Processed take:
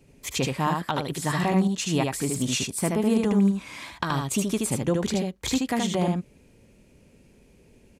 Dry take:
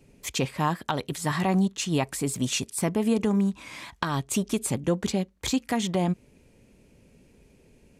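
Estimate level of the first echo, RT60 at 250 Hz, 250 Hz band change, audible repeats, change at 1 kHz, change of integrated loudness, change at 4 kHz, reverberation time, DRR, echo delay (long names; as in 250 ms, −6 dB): −3.5 dB, no reverb audible, +2.0 dB, 1, +1.5 dB, +1.5 dB, +1.5 dB, no reverb audible, no reverb audible, 76 ms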